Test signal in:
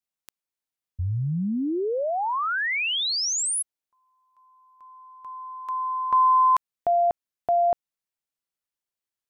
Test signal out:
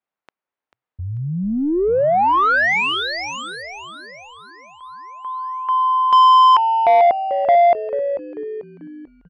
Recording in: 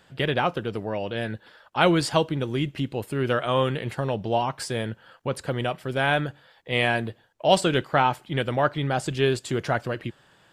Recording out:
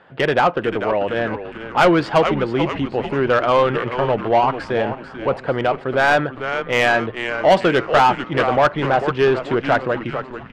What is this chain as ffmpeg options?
-filter_complex "[0:a]adynamicsmooth=sensitivity=0.5:basefreq=1700,asplit=7[s0][s1][s2][s3][s4][s5][s6];[s1]adelay=441,afreqshift=-130,volume=0.282[s7];[s2]adelay=882,afreqshift=-260,volume=0.146[s8];[s3]adelay=1323,afreqshift=-390,volume=0.0759[s9];[s4]adelay=1764,afreqshift=-520,volume=0.0398[s10];[s5]adelay=2205,afreqshift=-650,volume=0.0207[s11];[s6]adelay=2646,afreqshift=-780,volume=0.0107[s12];[s0][s7][s8][s9][s10][s11][s12]amix=inputs=7:normalize=0,asplit=2[s13][s14];[s14]highpass=f=720:p=1,volume=8.91,asoftclip=type=tanh:threshold=0.562[s15];[s13][s15]amix=inputs=2:normalize=0,lowpass=f=3700:p=1,volume=0.501,volume=1.19"

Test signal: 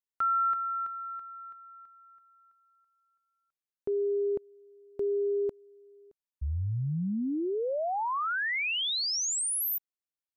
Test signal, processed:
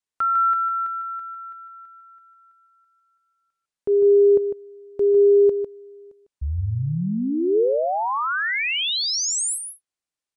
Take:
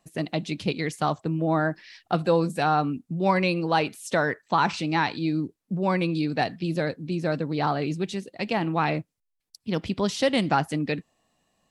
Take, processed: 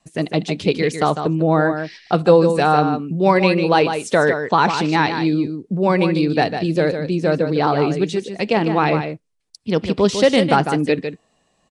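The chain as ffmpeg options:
-filter_complex "[0:a]adynamicequalizer=threshold=0.00708:dfrequency=440:dqfactor=2.6:tfrequency=440:tqfactor=2.6:attack=5:release=100:ratio=0.375:range=3.5:mode=boostabove:tftype=bell,asplit=2[s0][s1];[s1]aecho=0:1:151:0.398[s2];[s0][s2]amix=inputs=2:normalize=0,aresample=22050,aresample=44100,volume=2"

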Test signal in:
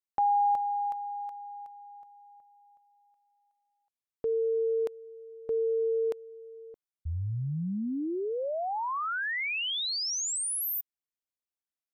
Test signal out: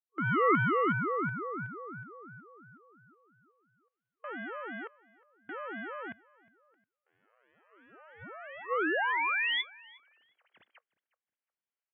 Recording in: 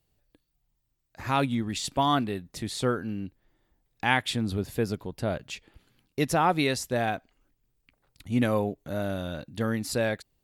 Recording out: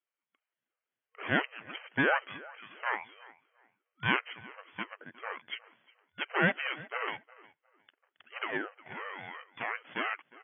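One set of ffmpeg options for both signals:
-filter_complex "[0:a]acrossover=split=1000[s0][s1];[s0]crystalizer=i=5:c=0[s2];[s2][s1]amix=inputs=2:normalize=0,dynaudnorm=f=250:g=3:m=3.76,aeval=exprs='0.891*(cos(1*acos(clip(val(0)/0.891,-1,1)))-cos(1*PI/2))+0.224*(cos(6*acos(clip(val(0)/0.891,-1,1)))-cos(6*PI/2))+0.0562*(cos(8*acos(clip(val(0)/0.891,-1,1)))-cos(8*PI/2))':c=same,asplit=2[s3][s4];[s4]aeval=exprs='0.126*(abs(mod(val(0)/0.126+3,4)-2)-1)':c=same,volume=0.316[s5];[s3][s5]amix=inputs=2:normalize=0,afftfilt=real='re*between(b*sr/4096,780,2800)':imag='im*between(b*sr/4096,780,2800)':win_size=4096:overlap=0.75,asplit=2[s6][s7];[s7]adelay=359,lowpass=f=1700:p=1,volume=0.112,asplit=2[s8][s9];[s9]adelay=359,lowpass=f=1700:p=1,volume=0.28[s10];[s6][s8][s10]amix=inputs=3:normalize=0,aeval=exprs='val(0)*sin(2*PI*500*n/s+500*0.4/2.9*sin(2*PI*2.9*n/s))':c=same,volume=0.376"

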